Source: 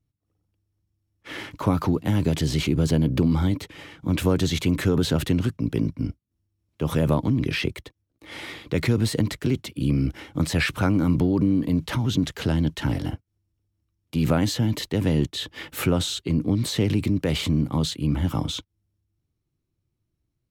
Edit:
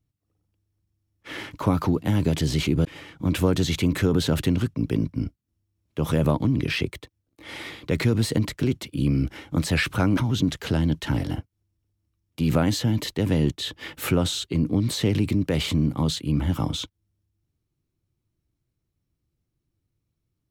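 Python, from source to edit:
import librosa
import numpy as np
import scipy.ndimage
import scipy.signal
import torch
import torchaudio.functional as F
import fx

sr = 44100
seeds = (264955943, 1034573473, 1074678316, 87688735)

y = fx.edit(x, sr, fx.cut(start_s=2.85, length_s=0.83),
    fx.cut(start_s=11.0, length_s=0.92), tone=tone)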